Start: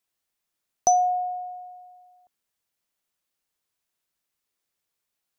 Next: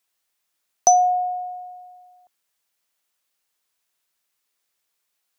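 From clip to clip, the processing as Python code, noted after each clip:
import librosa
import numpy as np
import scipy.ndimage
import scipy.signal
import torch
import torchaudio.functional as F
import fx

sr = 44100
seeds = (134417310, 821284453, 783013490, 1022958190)

y = fx.low_shelf(x, sr, hz=380.0, db=-10.5)
y = F.gain(torch.from_numpy(y), 6.5).numpy()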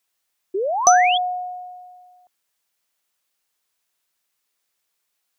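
y = fx.spec_paint(x, sr, seeds[0], shape='rise', start_s=0.54, length_s=0.64, low_hz=360.0, high_hz=3500.0, level_db=-23.0)
y = F.gain(torch.from_numpy(y), 1.0).numpy()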